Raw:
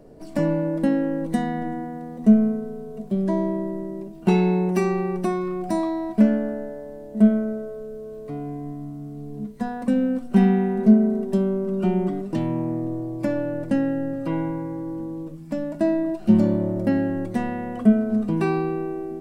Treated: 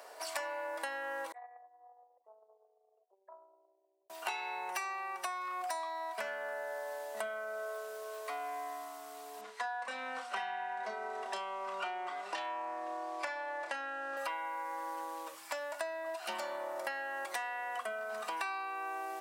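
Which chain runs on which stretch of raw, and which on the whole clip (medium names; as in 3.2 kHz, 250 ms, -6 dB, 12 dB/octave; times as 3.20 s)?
1.32–4.10 s: resonances exaggerated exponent 3 + high-pass 920 Hz 24 dB/octave + loudspeaker Doppler distortion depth 0.12 ms
9.41–14.17 s: distance through air 77 m + doubling 30 ms -5 dB
whole clip: high-pass 880 Hz 24 dB/octave; compression 10:1, threshold -49 dBFS; trim +13 dB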